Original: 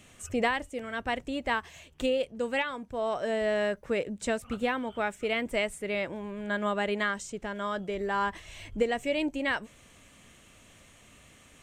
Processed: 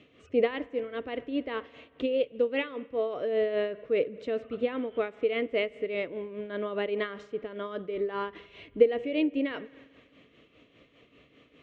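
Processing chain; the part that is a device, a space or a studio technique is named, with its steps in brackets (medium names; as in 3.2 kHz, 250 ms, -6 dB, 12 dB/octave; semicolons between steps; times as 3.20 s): combo amplifier with spring reverb and tremolo (spring tank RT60 1.7 s, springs 44 ms, chirp 55 ms, DRR 17.5 dB; tremolo 5 Hz, depth 60%; cabinet simulation 83–3600 Hz, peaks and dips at 92 Hz -9 dB, 200 Hz -5 dB, 290 Hz +8 dB, 450 Hz +10 dB, 860 Hz -10 dB, 1.6 kHz -7 dB)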